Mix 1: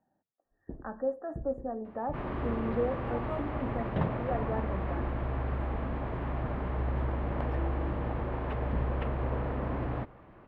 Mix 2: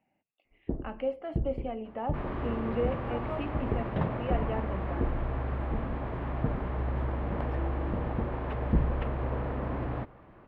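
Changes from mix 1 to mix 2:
speech: remove brick-wall FIR band-stop 1.9–6 kHz; first sound +10.0 dB

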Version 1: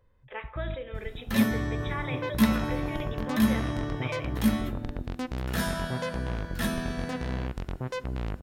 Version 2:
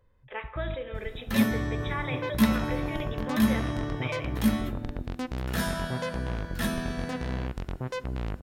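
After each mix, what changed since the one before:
speech: send +11.5 dB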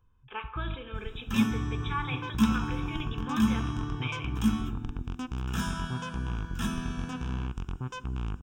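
speech +4.0 dB; master: add static phaser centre 2.9 kHz, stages 8

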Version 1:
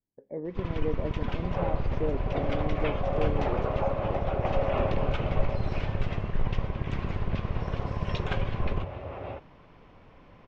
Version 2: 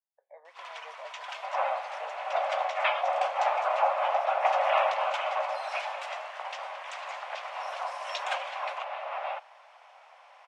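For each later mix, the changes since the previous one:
first sound: remove distance through air 160 m; second sound +9.5 dB; master: add steep high-pass 660 Hz 48 dB/octave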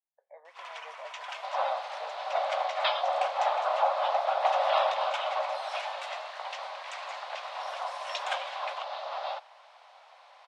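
second sound: add resonant high shelf 3.2 kHz +9.5 dB, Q 3

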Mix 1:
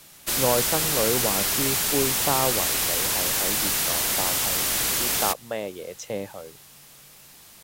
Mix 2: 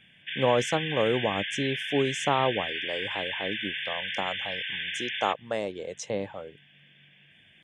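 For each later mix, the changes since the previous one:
background: add brick-wall FIR band-pass 1.5–3.6 kHz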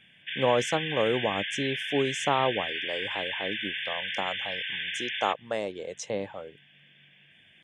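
master: add bass shelf 200 Hz -4 dB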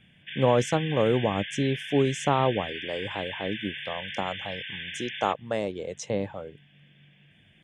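speech: add bass shelf 230 Hz +12 dB; background -4.0 dB

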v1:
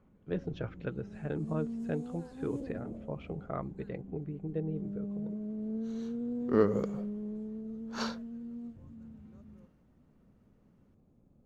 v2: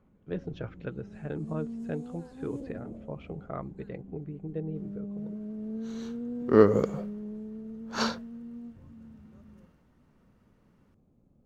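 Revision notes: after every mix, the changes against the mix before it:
second sound +7.5 dB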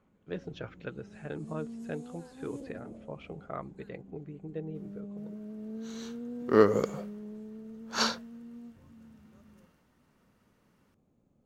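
master: add tilt EQ +2 dB/octave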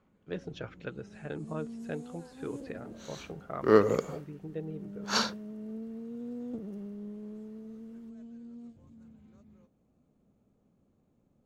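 speech: remove distance through air 62 m; second sound: entry -2.85 s

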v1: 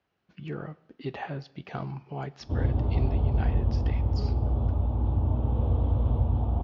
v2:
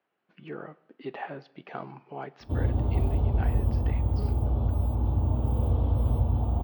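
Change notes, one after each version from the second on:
speech: add band-pass 270–2500 Hz; master: remove distance through air 72 m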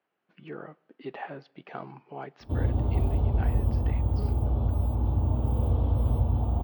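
speech: send -6.5 dB

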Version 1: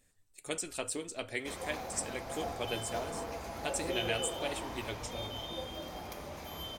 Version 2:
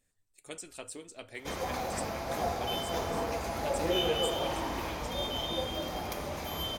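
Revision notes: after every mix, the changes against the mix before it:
speech -6.5 dB; background +7.0 dB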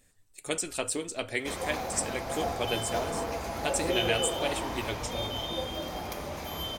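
speech +12.0 dB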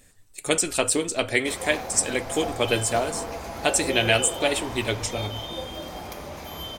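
speech +9.0 dB

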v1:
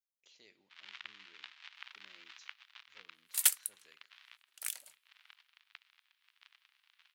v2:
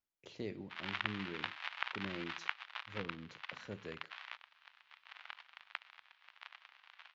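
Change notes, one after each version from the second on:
second sound: muted; master: remove differentiator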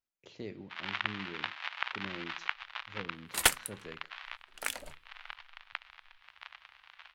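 first sound +4.0 dB; second sound: unmuted

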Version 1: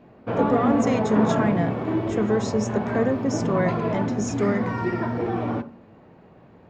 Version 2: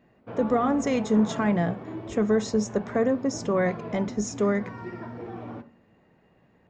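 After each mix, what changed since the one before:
background -12.0 dB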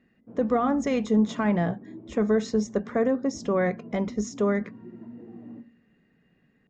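speech: add distance through air 61 m; background: add band-pass filter 230 Hz, Q 2.6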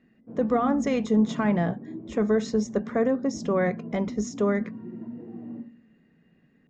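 background: send +8.0 dB

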